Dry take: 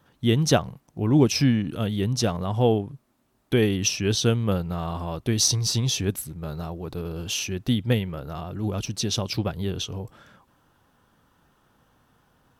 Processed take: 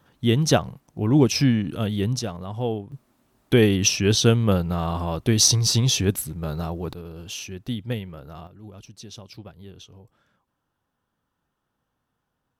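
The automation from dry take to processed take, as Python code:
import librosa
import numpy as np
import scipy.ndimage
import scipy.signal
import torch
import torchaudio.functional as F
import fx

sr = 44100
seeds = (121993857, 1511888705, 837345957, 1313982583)

y = fx.gain(x, sr, db=fx.steps((0.0, 1.0), (2.19, -6.0), (2.92, 4.0), (6.93, -6.0), (8.47, -15.0)))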